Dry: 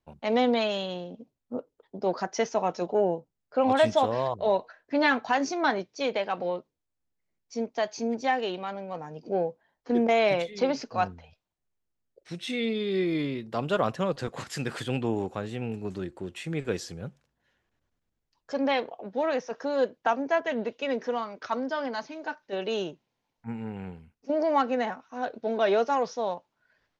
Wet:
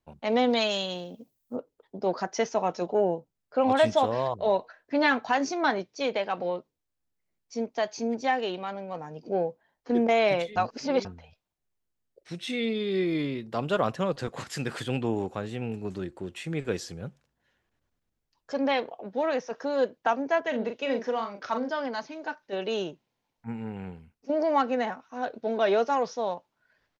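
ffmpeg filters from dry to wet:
ffmpeg -i in.wav -filter_complex "[0:a]asplit=3[link_01][link_02][link_03];[link_01]afade=type=out:start_time=0.49:duration=0.02[link_04];[link_02]aemphasis=mode=production:type=75fm,afade=type=in:start_time=0.49:duration=0.02,afade=type=out:start_time=1.55:duration=0.02[link_05];[link_03]afade=type=in:start_time=1.55:duration=0.02[link_06];[link_04][link_05][link_06]amix=inputs=3:normalize=0,asplit=3[link_07][link_08][link_09];[link_07]afade=type=out:start_time=20.52:duration=0.02[link_10];[link_08]asplit=2[link_11][link_12];[link_12]adelay=40,volume=-7dB[link_13];[link_11][link_13]amix=inputs=2:normalize=0,afade=type=in:start_time=20.52:duration=0.02,afade=type=out:start_time=21.69:duration=0.02[link_14];[link_09]afade=type=in:start_time=21.69:duration=0.02[link_15];[link_10][link_14][link_15]amix=inputs=3:normalize=0,asplit=3[link_16][link_17][link_18];[link_16]atrim=end=10.562[link_19];[link_17]atrim=start=10.558:end=11.052,asetpts=PTS-STARTPTS,areverse[link_20];[link_18]atrim=start=11.048[link_21];[link_19][link_20]acrossfade=duration=0.004:curve1=hsin:curve2=hsin[link_22];[link_22][link_21]acrossfade=duration=0.004:curve1=hsin:curve2=hsin" out.wav

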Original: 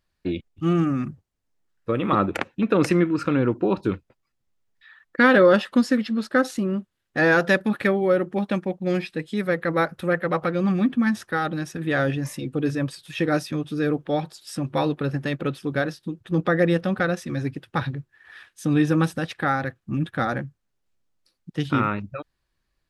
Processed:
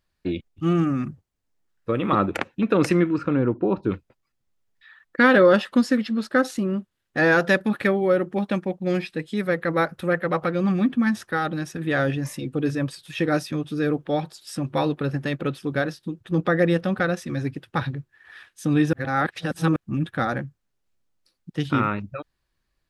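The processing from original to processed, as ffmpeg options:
ffmpeg -i in.wav -filter_complex "[0:a]asettb=1/sr,asplit=3[link_01][link_02][link_03];[link_01]atrim=end=3.184[link_04];[link_02]atrim=start=3.18:end=3.91,asetpts=PTS-STARTPTS,afade=type=in:duration=0.004:curve=qsin,afade=type=out:start_time=0.726:duration=0.004:curve=qsin,lowpass=frequency=1300:poles=1[link_05];[link_03]atrim=start=3.906[link_06];[link_04][link_05]acrossfade=duration=0.004:curve1=hsin:curve2=qsin[link_07];[link_07][link_06]acrossfade=duration=0.004:curve1=qsin:curve2=hsin,asplit=3[link_08][link_09][link_10];[link_08]atrim=end=18.932[link_11];[link_09]atrim=start=18.928:end=19.762,asetpts=PTS-STARTPTS,areverse[link_12];[link_10]atrim=start=19.758[link_13];[link_11][link_12]acrossfade=duration=0.004:curve1=hsin:curve2=hsin[link_14];[link_14][link_13]acrossfade=duration=0.004:curve1=hsin:curve2=hsin" out.wav

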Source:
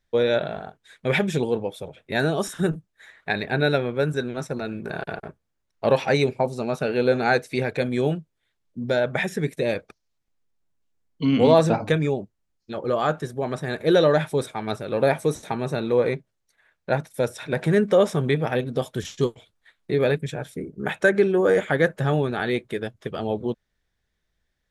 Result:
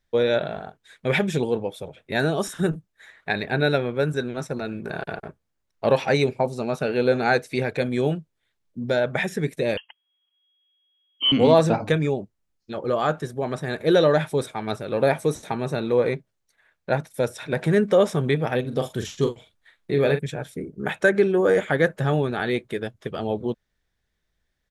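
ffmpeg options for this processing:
ffmpeg -i in.wav -filter_complex "[0:a]asettb=1/sr,asplit=3[link_01][link_02][link_03];[link_01]atrim=end=9.774[link_04];[link_02]atrim=start=9.77:end=11.32,asetpts=PTS-STARTPTS,afade=type=in:duration=0.004:curve=qsin,afade=type=out:start_time=1.546:duration=0.004:curve=qsin,lowpass=frequency=2800:width_type=q:width=0.5098,lowpass=frequency=2800:width_type=q:width=0.6013,lowpass=frequency=2800:width_type=q:width=0.9,lowpass=frequency=2800:width_type=q:width=2.563,afreqshift=-3300[link_05];[link_03]atrim=start=11.316[link_06];[link_04][link_05]acrossfade=duration=0.004:curve1=hsin:curve2=qsin[link_07];[link_07][link_06]acrossfade=duration=0.004:curve1=qsin:curve2=hsin,asplit=3[link_08][link_09][link_10];[link_08]afade=type=out:start_time=18.64:duration=0.02[link_11];[link_09]asplit=2[link_12][link_13];[link_13]adelay=43,volume=-8dB[link_14];[link_12][link_14]amix=inputs=2:normalize=0,afade=type=in:start_time=18.64:duration=0.02,afade=type=out:start_time=20.18:duration=0.02[link_15];[link_10]afade=type=in:start_time=20.18:duration=0.02[link_16];[link_11][link_15][link_16]amix=inputs=3:normalize=0" out.wav

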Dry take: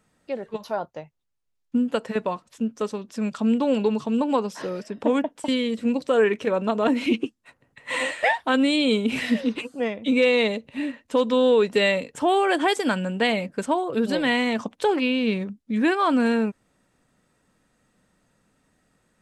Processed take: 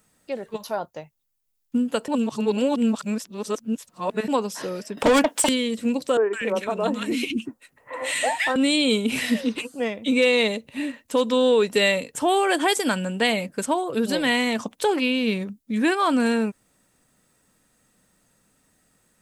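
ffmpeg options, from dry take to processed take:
ffmpeg -i in.wav -filter_complex "[0:a]asettb=1/sr,asplit=3[link_01][link_02][link_03];[link_01]atrim=end=4.974[link_04];[link_02]atrim=start=4.97:end=5.49,asetpts=PTS-STARTPTS,afade=type=in:duration=0.004:curve=qsin,afade=type=out:start_time=0.516:duration=0.004:curve=qsin,asplit=2[link_05][link_06];[link_06]highpass=frequency=720:poles=1,volume=22dB,asoftclip=type=tanh:threshold=-9dB[link_07];[link_05][link_07]amix=inputs=2:normalize=0,lowpass=frequency=7300:poles=1,volume=-6dB[link_08];[link_03]atrim=start=5.486[link_09];[link_04][link_08]acrossfade=duration=0.004:curve1=hsin:curve2=qsin[link_10];[link_10][link_09]acrossfade=duration=0.004:curve1=qsin:curve2=hsin,asettb=1/sr,asplit=3[link_11][link_12][link_13];[link_11]atrim=end=6.174[link_14];[link_12]atrim=start=6.17:end=8.56,asetpts=PTS-STARTPTS,afade=type=in:duration=0.004:curve=qsin,afade=type=out:start_time=2.386:duration=0.004:curve=qsin,acrossover=split=290|1400[link_15][link_16][link_17];[link_17]adelay=160[link_18];[link_15]adelay=240[link_19];[link_19][link_16][link_18]amix=inputs=3:normalize=0,atrim=end_sample=105399[link_20];[link_13]atrim=start=8.556[link_21];[link_14][link_20]acrossfade=duration=0.004:curve1=hsin:curve2=qsin[link_22];[link_22][link_21]acrossfade=duration=0.004:curve1=qsin:curve2=hsin,asplit=3[link_23][link_24][link_25];[link_23]atrim=end=2.082[link_26];[link_24]atrim=start=2.078:end=4.282,asetpts=PTS-STARTPTS,areverse[link_27];[link_25]atrim=start=4.278[link_28];[link_26][link_27]acrossfade=duration=0.004:curve1=hsin:curve2=hsin[link_29];[link_29][link_28]acrossfade=duration=0.004:curve1=hsin:curve2=hsin,aemphasis=mode=production:type=50fm" out.wav

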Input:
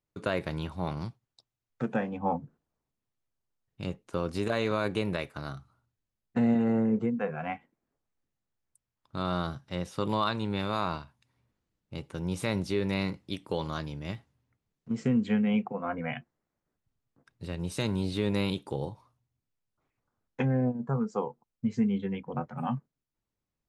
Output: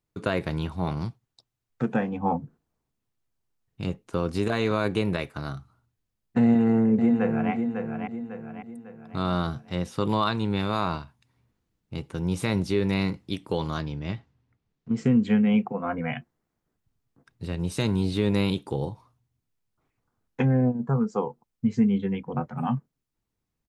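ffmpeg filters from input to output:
ffmpeg -i in.wav -filter_complex "[0:a]asplit=2[link_01][link_02];[link_02]afade=type=in:start_time=6.43:duration=0.01,afade=type=out:start_time=7.52:duration=0.01,aecho=0:1:550|1100|1650|2200|2750:0.501187|0.225534|0.10149|0.0456707|0.0205518[link_03];[link_01][link_03]amix=inputs=2:normalize=0,asettb=1/sr,asplit=3[link_04][link_05][link_06];[link_04]atrim=end=13.814[link_07];[link_05]atrim=start=13.81:end=14.97,asetpts=PTS-STARTPTS,afade=type=in:duration=0.004:curve=qsin,afade=type=out:start_time=1.156:duration=0.004:curve=qsin,lowpass=5200[link_08];[link_06]atrim=start=14.966[link_09];[link_07][link_08]acrossfade=duration=0.004:curve1=hsin:curve2=qsin[link_10];[link_10][link_09]acrossfade=duration=0.004:curve1=qsin:curve2=hsin,lowshelf=frequency=420:gain=3,bandreject=frequency=570:width=12,volume=3dB" out.wav

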